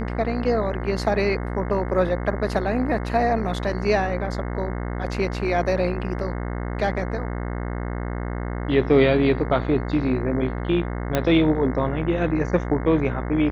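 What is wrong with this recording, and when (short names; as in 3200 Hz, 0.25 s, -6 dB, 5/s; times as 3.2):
buzz 60 Hz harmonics 36 -28 dBFS
11.15 pop -7 dBFS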